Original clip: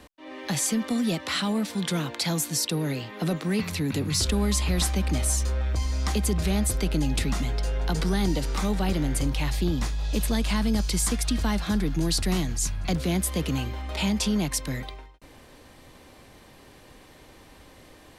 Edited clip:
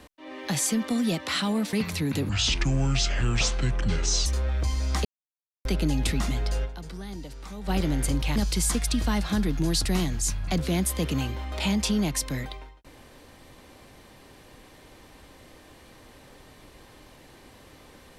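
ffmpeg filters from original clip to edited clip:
ffmpeg -i in.wav -filter_complex "[0:a]asplit=9[link_01][link_02][link_03][link_04][link_05][link_06][link_07][link_08][link_09];[link_01]atrim=end=1.732[link_10];[link_02]atrim=start=3.518:end=4.084[link_11];[link_03]atrim=start=4.08:end=5.38,asetpts=PTS-STARTPTS,asetrate=29106,aresample=44100[link_12];[link_04]atrim=start=5.376:end=6.17,asetpts=PTS-STARTPTS,afade=type=out:start_time=0.79:duration=0.004:curve=hsin[link_13];[link_05]atrim=start=6.17:end=6.77,asetpts=PTS-STARTPTS,volume=0[link_14];[link_06]atrim=start=6.77:end=8.07,asetpts=PTS-STARTPTS,afade=type=in:duration=0.004:curve=hsin,afade=type=out:start_time=0.99:duration=0.31:curve=exp:silence=0.211349[link_15];[link_07]atrim=start=8.07:end=8.51,asetpts=PTS-STARTPTS,volume=-13.5dB[link_16];[link_08]atrim=start=8.51:end=9.482,asetpts=PTS-STARTPTS,afade=type=in:duration=0.31:curve=exp:silence=0.211349[link_17];[link_09]atrim=start=10.728[link_18];[link_10][link_11]acrossfade=duration=0.004:curve1=hsin:curve2=hsin[link_19];[link_19][link_12]acrossfade=duration=0.004:curve1=hsin:curve2=hsin[link_20];[link_13][link_14][link_15][link_16][link_17]concat=n=5:v=0:a=1[link_21];[link_20][link_21]acrossfade=duration=0.004:curve1=hsin:curve2=hsin[link_22];[link_22][link_18]acrossfade=duration=0.004:curve1=hsin:curve2=hsin" out.wav

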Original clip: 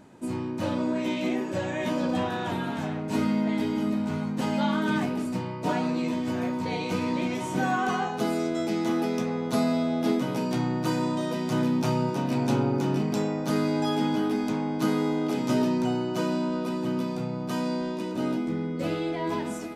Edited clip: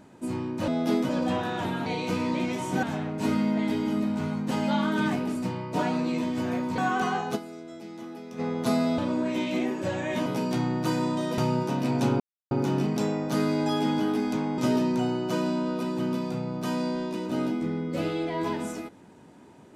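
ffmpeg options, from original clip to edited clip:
ffmpeg -i in.wav -filter_complex "[0:a]asplit=13[link_01][link_02][link_03][link_04][link_05][link_06][link_07][link_08][link_09][link_10][link_11][link_12][link_13];[link_01]atrim=end=0.682[link_14];[link_02]atrim=start=9.848:end=10.262[link_15];[link_03]atrim=start=1.958:end=2.732[link_16];[link_04]atrim=start=6.678:end=7.652[link_17];[link_05]atrim=start=2.728:end=6.682[link_18];[link_06]atrim=start=7.648:end=8.4,asetpts=PTS-STARTPTS,afade=type=out:start_time=0.572:duration=0.18:curve=exp:silence=0.199526[link_19];[link_07]atrim=start=8.4:end=9.09,asetpts=PTS-STARTPTS,volume=-14dB[link_20];[link_08]atrim=start=9.09:end=9.852,asetpts=PTS-STARTPTS,afade=type=in:duration=0.18:curve=exp:silence=0.199526[link_21];[link_09]atrim=start=0.678:end=1.962[link_22];[link_10]atrim=start=10.258:end=11.382[link_23];[link_11]atrim=start=11.848:end=12.67,asetpts=PTS-STARTPTS,afade=type=out:start_time=0.818:duration=0.004:curve=hsin,apad=pad_dur=0.31[link_24];[link_12]atrim=start=12.67:end=14.742,asetpts=PTS-STARTPTS,afade=type=in:duration=0.004:curve=hsin[link_25];[link_13]atrim=start=15.438[link_26];[link_14][link_15]acrossfade=duration=0.004:curve1=hsin:curve2=hsin[link_27];[link_27][link_16]acrossfade=duration=0.004:curve1=hsin:curve2=hsin[link_28];[link_28][link_17]acrossfade=duration=0.004:curve1=hsin:curve2=hsin[link_29];[link_29][link_18]acrossfade=duration=0.004:curve1=hsin:curve2=hsin[link_30];[link_19][link_20][link_21]concat=n=3:v=0:a=1[link_31];[link_30][link_31]acrossfade=duration=0.004:curve1=hsin:curve2=hsin[link_32];[link_32][link_22]acrossfade=duration=0.004:curve1=hsin:curve2=hsin[link_33];[link_33][link_23]acrossfade=duration=0.004:curve1=hsin:curve2=hsin[link_34];[link_24][link_25]concat=n=2:v=0:a=1[link_35];[link_34][link_35]acrossfade=duration=0.004:curve1=hsin:curve2=hsin[link_36];[link_36][link_26]acrossfade=duration=0.004:curve1=hsin:curve2=hsin" out.wav

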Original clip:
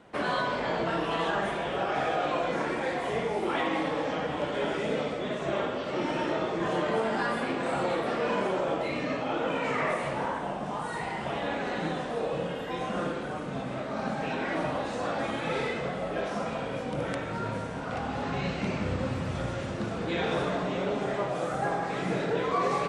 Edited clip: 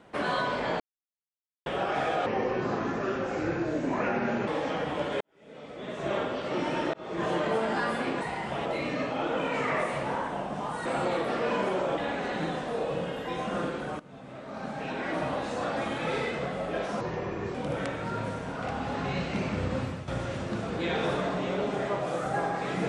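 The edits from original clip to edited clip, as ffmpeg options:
ffmpeg -i in.wav -filter_complex "[0:a]asplit=15[link_01][link_02][link_03][link_04][link_05][link_06][link_07][link_08][link_09][link_10][link_11][link_12][link_13][link_14][link_15];[link_01]atrim=end=0.8,asetpts=PTS-STARTPTS,afade=type=out:start_time=0.796:duration=0.004:curve=hsin[link_16];[link_02]atrim=start=0.8:end=1.66,asetpts=PTS-STARTPTS,volume=0[link_17];[link_03]atrim=start=1.66:end=2.264,asetpts=PTS-STARTPTS,afade=type=in:duration=0.004:curve=hsin[link_18];[link_04]atrim=start=2.26:end=3.9,asetpts=PTS-STARTPTS,asetrate=32634,aresample=44100,atrim=end_sample=97735,asetpts=PTS-STARTPTS[link_19];[link_05]atrim=start=3.896:end=4.63,asetpts=PTS-STARTPTS,afade=type=out:start_time=0.73:duration=0.004:curve=hsin[link_20];[link_06]atrim=start=4.63:end=6.36,asetpts=PTS-STARTPTS,afade=type=in:duration=0.91:curve=qua,afade=type=out:start_time=1.726:duration=0.004:curve=hsin[link_21];[link_07]atrim=start=6.36:end=7.642,asetpts=PTS-STARTPTS,afade=type=in:duration=0.3[link_22];[link_08]atrim=start=10.958:end=11.402[link_23];[link_09]atrim=start=8.758:end=10.962[link_24];[link_10]atrim=start=7.638:end=8.762[link_25];[link_11]atrim=start=11.398:end=13.42,asetpts=PTS-STARTPTS,afade=type=out:start_time=2.018:duration=0.004:curve=hsin:silence=0.125893[link_26];[link_12]atrim=start=13.42:end=16.434,asetpts=PTS-STARTPTS,afade=type=in:duration=1.3:silence=0.125893[link_27];[link_13]atrim=start=16.43:end=16.83,asetpts=PTS-STARTPTS,asetrate=32634,aresample=44100[link_28];[link_14]atrim=start=16.826:end=19.36,asetpts=PTS-STARTPTS,afade=type=out:start_time=2.274:duration=0.26:silence=0.266073[link_29];[link_15]atrim=start=19.36,asetpts=PTS-STARTPTS,afade=type=in:duration=0.004:curve=hsin:silence=0.266073[link_30];[link_16][link_17][link_18]concat=n=3:v=0:a=1[link_31];[link_31][link_19]acrossfade=duration=0.004:curve1=hsin:curve2=hsin[link_32];[link_20][link_21][link_22]concat=n=3:v=0:a=1[link_33];[link_32][link_33]acrossfade=duration=0.004:curve1=hsin:curve2=hsin[link_34];[link_34][link_23]acrossfade=duration=0.004:curve1=hsin:curve2=hsin[link_35];[link_35][link_24]acrossfade=duration=0.004:curve1=hsin:curve2=hsin[link_36];[link_36][link_25]acrossfade=duration=0.004:curve1=hsin:curve2=hsin[link_37];[link_26][link_27]concat=n=2:v=0:a=1[link_38];[link_37][link_38]acrossfade=duration=0.004:curve1=hsin:curve2=hsin[link_39];[link_39][link_28]acrossfade=duration=0.004:curve1=hsin:curve2=hsin[link_40];[link_29][link_30]concat=n=2:v=0:a=1[link_41];[link_40][link_41]acrossfade=duration=0.004:curve1=hsin:curve2=hsin" out.wav

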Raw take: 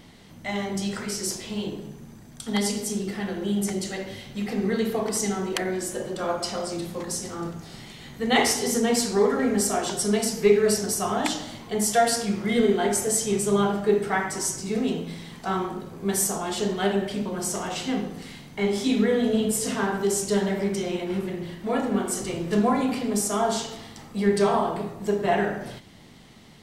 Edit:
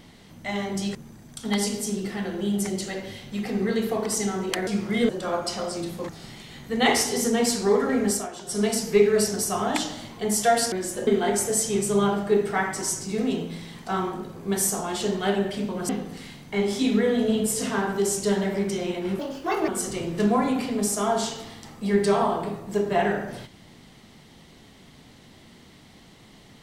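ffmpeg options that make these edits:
ffmpeg -i in.wav -filter_complex "[0:a]asplit=12[link_01][link_02][link_03][link_04][link_05][link_06][link_07][link_08][link_09][link_10][link_11][link_12];[link_01]atrim=end=0.952[link_13];[link_02]atrim=start=1.978:end=5.702[link_14];[link_03]atrim=start=12.218:end=12.642[link_15];[link_04]atrim=start=6.048:end=7.052[link_16];[link_05]atrim=start=7.588:end=9.78,asetpts=PTS-STARTPTS,afade=type=out:start_time=1.952:duration=0.24:curve=qsin:silence=0.281838[link_17];[link_06]atrim=start=9.78:end=9.95,asetpts=PTS-STARTPTS,volume=-11dB[link_18];[link_07]atrim=start=9.95:end=12.222,asetpts=PTS-STARTPTS,afade=type=in:duration=0.24:curve=qsin:silence=0.281838[link_19];[link_08]atrim=start=5.698:end=6.052[link_20];[link_09]atrim=start=12.638:end=17.462[link_21];[link_10]atrim=start=17.938:end=21.244[link_22];[link_11]atrim=start=21.24:end=22.01,asetpts=PTS-STARTPTS,asetrate=69237,aresample=44100[link_23];[link_12]atrim=start=22.006[link_24];[link_13][link_14]acrossfade=duration=0.004:curve1=hsin:curve2=hsin[link_25];[link_25][link_15]acrossfade=duration=0.004:curve1=hsin:curve2=hsin[link_26];[link_26][link_16]acrossfade=duration=0.004:curve1=hsin:curve2=hsin[link_27];[link_17][link_18][link_19]concat=n=3:v=0:a=1[link_28];[link_27][link_28]acrossfade=duration=0.004:curve1=hsin:curve2=hsin[link_29];[link_29][link_20]acrossfade=duration=0.004:curve1=hsin:curve2=hsin[link_30];[link_30][link_21]acrossfade=duration=0.004:curve1=hsin:curve2=hsin[link_31];[link_31][link_22]acrossfade=duration=0.004:curve1=hsin:curve2=hsin[link_32];[link_32][link_23]acrossfade=duration=0.004:curve1=hsin:curve2=hsin[link_33];[link_33][link_24]acrossfade=duration=0.004:curve1=hsin:curve2=hsin" out.wav

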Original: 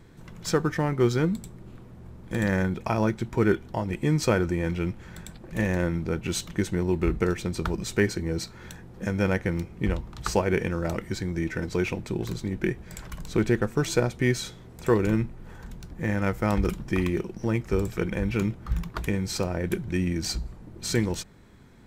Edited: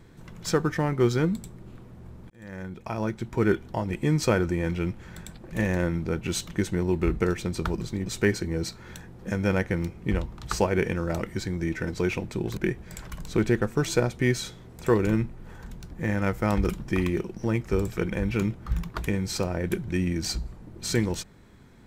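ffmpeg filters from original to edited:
ffmpeg -i in.wav -filter_complex "[0:a]asplit=5[link_01][link_02][link_03][link_04][link_05];[link_01]atrim=end=2.3,asetpts=PTS-STARTPTS,afade=type=out:start_time=2.296:duration=0.004:curve=hsin[link_06];[link_02]atrim=start=2.3:end=7.812,asetpts=PTS-STARTPTS,afade=type=in:duration=1.26[link_07];[link_03]atrim=start=12.318:end=12.572[link_08];[link_04]atrim=start=7.808:end=12.322[link_09];[link_05]atrim=start=12.568[link_10];[link_06][link_07]concat=n=2:v=0:a=1[link_11];[link_11][link_08]acrossfade=duration=0.004:curve1=hsin:curve2=hsin[link_12];[link_12][link_09]acrossfade=duration=0.004:curve1=hsin:curve2=hsin[link_13];[link_13][link_10]acrossfade=duration=0.004:curve1=hsin:curve2=hsin" out.wav

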